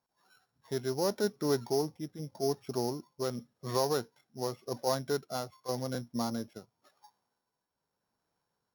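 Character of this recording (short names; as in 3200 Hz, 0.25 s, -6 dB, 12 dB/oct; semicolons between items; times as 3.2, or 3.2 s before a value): a buzz of ramps at a fixed pitch in blocks of 8 samples; tremolo triangle 0.87 Hz, depth 45%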